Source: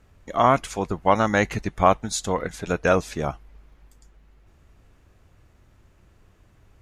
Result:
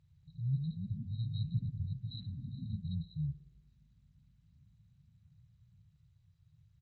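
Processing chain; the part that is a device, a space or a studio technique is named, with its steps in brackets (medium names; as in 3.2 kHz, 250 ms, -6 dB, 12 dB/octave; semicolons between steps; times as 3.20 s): FFT band-reject 170–3800 Hz; 0.71–2.45 s: low-pass 6.8 kHz 24 dB/octave; tape echo 60 ms, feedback 83%, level -17 dB, low-pass 2.3 kHz; ever faster or slower copies 232 ms, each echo +3 st, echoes 3, each echo -6 dB; Bluetooth headset (high-pass 130 Hz 12 dB/octave; resampled via 8 kHz; SBC 64 kbps 16 kHz)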